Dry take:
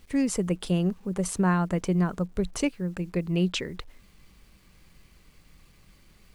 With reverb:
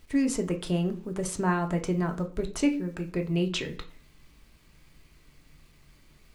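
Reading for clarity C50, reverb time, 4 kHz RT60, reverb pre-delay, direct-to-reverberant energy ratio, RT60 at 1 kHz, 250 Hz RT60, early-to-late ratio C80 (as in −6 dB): 14.0 dB, 0.40 s, 0.45 s, 3 ms, 4.0 dB, 0.40 s, 0.50 s, 19.5 dB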